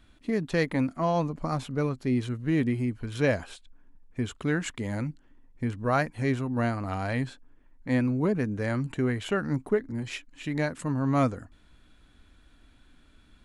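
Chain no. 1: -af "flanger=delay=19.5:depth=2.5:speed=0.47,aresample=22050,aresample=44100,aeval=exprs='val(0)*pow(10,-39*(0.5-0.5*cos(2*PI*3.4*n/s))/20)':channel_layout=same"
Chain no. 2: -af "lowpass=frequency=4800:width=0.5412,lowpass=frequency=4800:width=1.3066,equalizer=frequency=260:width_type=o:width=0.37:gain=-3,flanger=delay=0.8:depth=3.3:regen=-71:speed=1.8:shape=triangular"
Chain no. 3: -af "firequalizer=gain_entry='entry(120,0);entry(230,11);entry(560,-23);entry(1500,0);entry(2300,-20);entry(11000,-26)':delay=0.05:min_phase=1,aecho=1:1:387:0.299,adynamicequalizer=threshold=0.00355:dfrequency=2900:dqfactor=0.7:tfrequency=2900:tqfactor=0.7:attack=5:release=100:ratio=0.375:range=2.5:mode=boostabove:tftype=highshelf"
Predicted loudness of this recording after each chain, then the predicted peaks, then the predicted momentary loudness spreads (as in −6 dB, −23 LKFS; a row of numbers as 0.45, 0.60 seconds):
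−38.0, −34.0, −24.5 LKFS; −15.5, −17.5, −10.0 dBFS; 12, 9, 12 LU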